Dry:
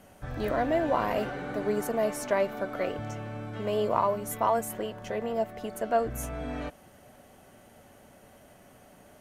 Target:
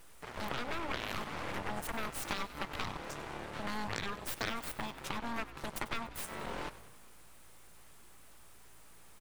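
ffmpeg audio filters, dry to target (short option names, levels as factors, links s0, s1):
-filter_complex "[0:a]equalizer=f=9100:w=2.9:g=8,acompressor=threshold=0.0141:ratio=5,highpass=190,aeval=exprs='abs(val(0))':c=same,aeval=exprs='0.0596*(cos(1*acos(clip(val(0)/0.0596,-1,1)))-cos(1*PI/2))+0.0188*(cos(8*acos(clip(val(0)/0.0596,-1,1)))-cos(8*PI/2))':c=same,asplit=2[s0][s1];[s1]asplit=5[s2][s3][s4][s5][s6];[s2]adelay=96,afreqshift=56,volume=0.158[s7];[s3]adelay=192,afreqshift=112,volume=0.0902[s8];[s4]adelay=288,afreqshift=168,volume=0.0513[s9];[s5]adelay=384,afreqshift=224,volume=0.0295[s10];[s6]adelay=480,afreqshift=280,volume=0.0168[s11];[s7][s8][s9][s10][s11]amix=inputs=5:normalize=0[s12];[s0][s12]amix=inputs=2:normalize=0,volume=1.88"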